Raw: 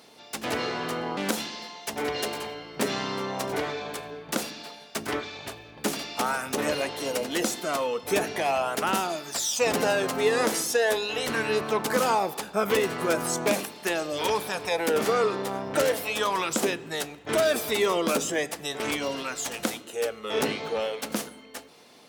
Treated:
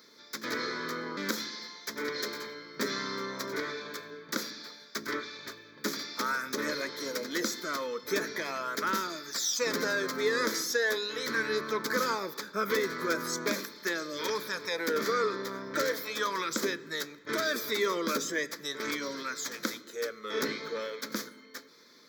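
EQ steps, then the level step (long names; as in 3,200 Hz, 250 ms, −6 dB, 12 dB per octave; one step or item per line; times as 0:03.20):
Bessel high-pass filter 290 Hz, order 2
phaser with its sweep stopped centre 2,800 Hz, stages 6
0.0 dB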